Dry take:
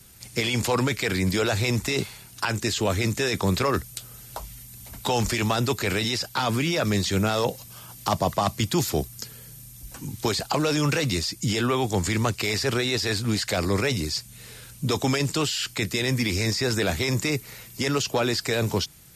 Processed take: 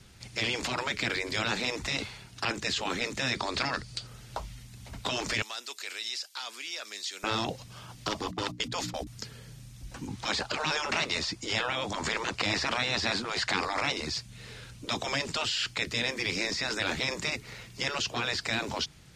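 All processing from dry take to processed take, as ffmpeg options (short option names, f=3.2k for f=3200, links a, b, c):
-filter_complex "[0:a]asettb=1/sr,asplit=3[a][b][c];[a]atrim=end=3.354[d];[b]atrim=start=3.35:end=4.07,asetpts=PTS-STARTPTS,afade=t=in:d=0.004:c=qsin,afade=t=out:st=0.716:d=0.004:c=qsin,lowpass=f=9.8k:w=0.5412,lowpass=f=9.8k:w=1.3066,equalizer=f=4.6k:t=o:w=0.24:g=12,acompressor=mode=upward:threshold=-37dB:ratio=2.5:attack=3.2:release=140:knee=2.83:detection=peak[e];[c]atrim=start=4.066[f];[d][e]acrossfade=d=0.004:c1=hsin:c2=qsin[g];[g][f]acrossfade=d=0.004:c1=qsin:c2=hsin,asettb=1/sr,asplit=3[h][i][j];[h]atrim=end=5.424[k];[i]atrim=start=5.42:end=7.24,asetpts=PTS-STARTPTS,afade=t=in:d=0.004:c=qsin,afade=t=out:st=1.816:d=0.004:c=qsin,highpass=f=260:w=0.5412,highpass=f=260:w=1.3066,aderivative[l];[j]atrim=start=7.236[m];[k][l]acrossfade=d=0.004:c1=hsin:c2=qsin[n];[n][m]acrossfade=d=0.004:c1=qsin:c2=hsin,asettb=1/sr,asplit=3[o][p][q];[o]atrim=end=8.264[r];[p]atrim=start=8.26:end=9.07,asetpts=PTS-STARTPTS,afade=t=in:d=0.004:c=qsin,afade=t=out:st=0.806:d=0.004:c=qsin,agate=range=-20dB:threshold=-29dB:ratio=16:release=100:detection=peak,equalizer=f=220:w=0.98:g=4.5,bandreject=f=60:t=h:w=6,bandreject=f=120:t=h:w=6,bandreject=f=180:t=h:w=6,bandreject=f=240:t=h:w=6,bandreject=f=300:t=h:w=6[s];[q]atrim=start=9.066[t];[r][s]acrossfade=d=0.004:c1=hsin:c2=qsin[u];[u][t]acrossfade=d=0.004:c1=qsin:c2=hsin,asettb=1/sr,asplit=3[v][w][x];[v]atrim=end=10.074[y];[w]atrim=start=10.07:end=14.1,asetpts=PTS-STARTPTS,afade=t=in:d=0.004:c=qsin,afade=t=out:st=4.026:d=0.004:c=qsin,lowpass=11k,equalizer=f=900:t=o:w=1.7:g=7.5[z];[x]atrim=start=14.096[aa];[y][z]acrossfade=d=0.004:c1=hsin:c2=qsin[ab];[ab][aa]acrossfade=d=0.004:c1=qsin:c2=hsin,afftfilt=real='re*lt(hypot(re,im),0.2)':imag='im*lt(hypot(re,im),0.2)':win_size=1024:overlap=0.75,lowpass=4.9k"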